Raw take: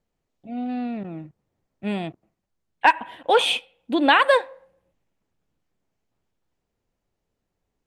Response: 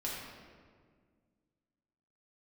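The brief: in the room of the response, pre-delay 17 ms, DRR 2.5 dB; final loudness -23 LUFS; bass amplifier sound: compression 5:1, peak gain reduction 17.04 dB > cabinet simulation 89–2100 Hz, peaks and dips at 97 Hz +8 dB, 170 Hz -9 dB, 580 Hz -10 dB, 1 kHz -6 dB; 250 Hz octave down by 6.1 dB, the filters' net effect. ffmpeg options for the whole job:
-filter_complex "[0:a]equalizer=f=250:t=o:g=-6,asplit=2[s0][s1];[1:a]atrim=start_sample=2205,adelay=17[s2];[s1][s2]afir=irnorm=-1:irlink=0,volume=0.562[s3];[s0][s3]amix=inputs=2:normalize=0,acompressor=threshold=0.0355:ratio=5,highpass=f=89:w=0.5412,highpass=f=89:w=1.3066,equalizer=f=97:t=q:w=4:g=8,equalizer=f=170:t=q:w=4:g=-9,equalizer=f=580:t=q:w=4:g=-10,equalizer=f=1000:t=q:w=4:g=-6,lowpass=f=2100:w=0.5412,lowpass=f=2100:w=1.3066,volume=5.01"

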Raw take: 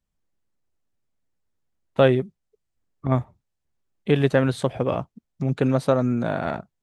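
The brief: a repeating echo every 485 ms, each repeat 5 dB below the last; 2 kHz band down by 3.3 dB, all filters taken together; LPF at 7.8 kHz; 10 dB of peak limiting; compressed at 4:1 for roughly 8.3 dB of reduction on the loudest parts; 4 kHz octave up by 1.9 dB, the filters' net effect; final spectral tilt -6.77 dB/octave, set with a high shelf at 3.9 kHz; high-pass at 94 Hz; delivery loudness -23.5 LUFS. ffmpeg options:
-af "highpass=94,lowpass=7800,equalizer=f=2000:t=o:g=-5,highshelf=f=3900:g=-6,equalizer=f=4000:t=o:g=7.5,acompressor=threshold=0.0708:ratio=4,alimiter=limit=0.112:level=0:latency=1,aecho=1:1:485|970|1455|1940|2425|2910|3395:0.562|0.315|0.176|0.0988|0.0553|0.031|0.0173,volume=2.66"

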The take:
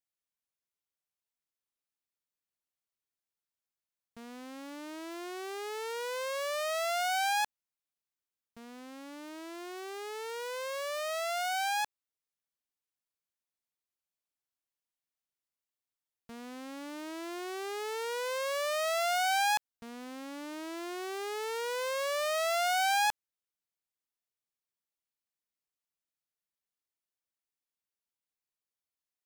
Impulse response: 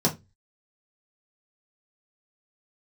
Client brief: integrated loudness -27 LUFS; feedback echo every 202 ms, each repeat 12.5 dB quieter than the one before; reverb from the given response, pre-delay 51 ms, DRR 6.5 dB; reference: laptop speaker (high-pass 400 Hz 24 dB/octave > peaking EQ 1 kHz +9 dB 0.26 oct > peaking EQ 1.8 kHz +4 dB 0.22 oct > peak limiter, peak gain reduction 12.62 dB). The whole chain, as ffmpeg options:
-filter_complex "[0:a]aecho=1:1:202|404|606:0.237|0.0569|0.0137,asplit=2[s0][s1];[1:a]atrim=start_sample=2205,adelay=51[s2];[s1][s2]afir=irnorm=-1:irlink=0,volume=0.119[s3];[s0][s3]amix=inputs=2:normalize=0,highpass=f=400:w=0.5412,highpass=f=400:w=1.3066,equalizer=f=1000:t=o:w=0.26:g=9,equalizer=f=1800:t=o:w=0.22:g=4,volume=3.16,alimiter=limit=0.15:level=0:latency=1"

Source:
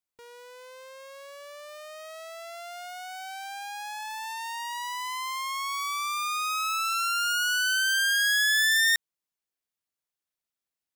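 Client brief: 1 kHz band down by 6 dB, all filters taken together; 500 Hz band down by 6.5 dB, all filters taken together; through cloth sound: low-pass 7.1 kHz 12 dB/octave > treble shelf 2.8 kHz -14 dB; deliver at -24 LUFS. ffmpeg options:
-af "lowpass=7100,equalizer=f=500:t=o:g=-6,equalizer=f=1000:t=o:g=-4,highshelf=f=2800:g=-14,volume=2.66"

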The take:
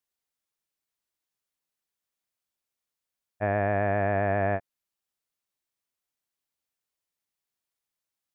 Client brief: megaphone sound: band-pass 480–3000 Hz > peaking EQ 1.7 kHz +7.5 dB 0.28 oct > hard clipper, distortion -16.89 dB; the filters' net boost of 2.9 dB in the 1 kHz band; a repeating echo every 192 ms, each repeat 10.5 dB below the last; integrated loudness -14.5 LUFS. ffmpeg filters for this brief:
-af "highpass=480,lowpass=3000,equalizer=f=1000:t=o:g=6,equalizer=f=1700:t=o:w=0.28:g=7.5,aecho=1:1:192|384|576:0.299|0.0896|0.0269,asoftclip=type=hard:threshold=0.112,volume=3.55"

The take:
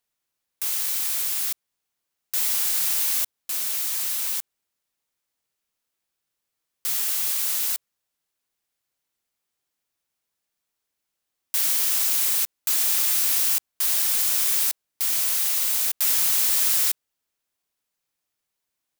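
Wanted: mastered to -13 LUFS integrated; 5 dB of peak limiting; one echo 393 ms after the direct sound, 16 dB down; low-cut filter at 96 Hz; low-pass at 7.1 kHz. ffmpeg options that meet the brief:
-af "highpass=96,lowpass=7100,alimiter=limit=0.0841:level=0:latency=1,aecho=1:1:393:0.158,volume=7.5"

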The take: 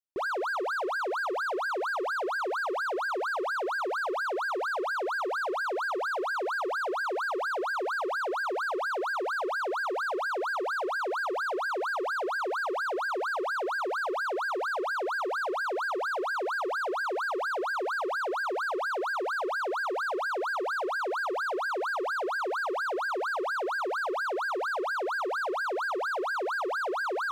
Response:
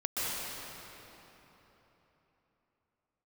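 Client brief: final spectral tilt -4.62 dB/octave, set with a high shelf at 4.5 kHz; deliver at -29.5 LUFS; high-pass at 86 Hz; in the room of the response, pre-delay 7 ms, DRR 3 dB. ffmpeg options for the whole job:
-filter_complex "[0:a]highpass=86,highshelf=f=4500:g=-6.5,asplit=2[s0][s1];[1:a]atrim=start_sample=2205,adelay=7[s2];[s1][s2]afir=irnorm=-1:irlink=0,volume=0.282[s3];[s0][s3]amix=inputs=2:normalize=0,volume=0.944"

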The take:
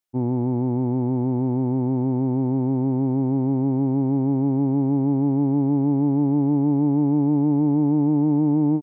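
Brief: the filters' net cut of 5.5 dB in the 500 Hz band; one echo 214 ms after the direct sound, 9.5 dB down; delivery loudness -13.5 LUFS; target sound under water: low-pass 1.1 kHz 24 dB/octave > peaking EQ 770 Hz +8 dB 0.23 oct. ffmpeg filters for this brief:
-af "lowpass=f=1100:w=0.5412,lowpass=f=1100:w=1.3066,equalizer=f=500:t=o:g=-8.5,equalizer=f=770:t=o:w=0.23:g=8,aecho=1:1:214:0.335,volume=2.82"

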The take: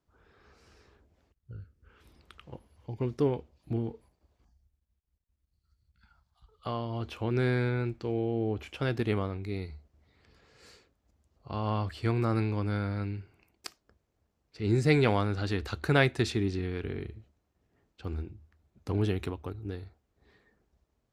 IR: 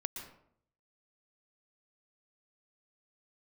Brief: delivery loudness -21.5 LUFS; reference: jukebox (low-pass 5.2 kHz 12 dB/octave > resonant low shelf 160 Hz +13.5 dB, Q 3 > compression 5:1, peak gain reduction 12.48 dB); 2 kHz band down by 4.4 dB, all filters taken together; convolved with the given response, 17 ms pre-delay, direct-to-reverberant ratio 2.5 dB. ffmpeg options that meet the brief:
-filter_complex "[0:a]equalizer=f=2000:t=o:g=-5.5,asplit=2[s0][s1];[1:a]atrim=start_sample=2205,adelay=17[s2];[s1][s2]afir=irnorm=-1:irlink=0,volume=0.75[s3];[s0][s3]amix=inputs=2:normalize=0,lowpass=5200,lowshelf=f=160:t=q:w=3:g=13.5,acompressor=threshold=0.158:ratio=5,volume=0.944"

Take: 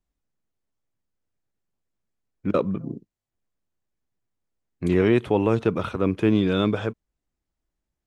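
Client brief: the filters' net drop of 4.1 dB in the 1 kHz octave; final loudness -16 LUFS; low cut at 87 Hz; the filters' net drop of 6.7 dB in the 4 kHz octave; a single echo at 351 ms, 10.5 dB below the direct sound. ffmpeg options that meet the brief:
-af "highpass=87,equalizer=f=1000:t=o:g=-5,equalizer=f=4000:t=o:g=-8,aecho=1:1:351:0.299,volume=2.51"

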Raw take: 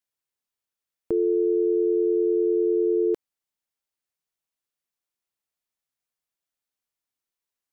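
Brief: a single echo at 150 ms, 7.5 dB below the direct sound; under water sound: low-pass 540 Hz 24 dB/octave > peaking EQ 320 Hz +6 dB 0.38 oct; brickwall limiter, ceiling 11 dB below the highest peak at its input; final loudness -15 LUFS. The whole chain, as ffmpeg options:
-af "alimiter=level_in=1.33:limit=0.0631:level=0:latency=1,volume=0.75,lowpass=f=540:w=0.5412,lowpass=f=540:w=1.3066,equalizer=f=320:t=o:w=0.38:g=6,aecho=1:1:150:0.422,volume=6.68"

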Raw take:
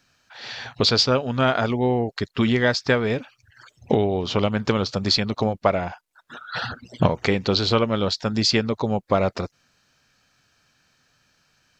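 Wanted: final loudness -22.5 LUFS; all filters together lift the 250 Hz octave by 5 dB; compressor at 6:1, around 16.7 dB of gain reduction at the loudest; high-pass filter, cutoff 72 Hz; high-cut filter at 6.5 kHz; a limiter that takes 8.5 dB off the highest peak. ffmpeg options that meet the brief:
-af "highpass=72,lowpass=6500,equalizer=f=250:t=o:g=6,acompressor=threshold=0.0251:ratio=6,volume=5.62,alimiter=limit=0.335:level=0:latency=1"

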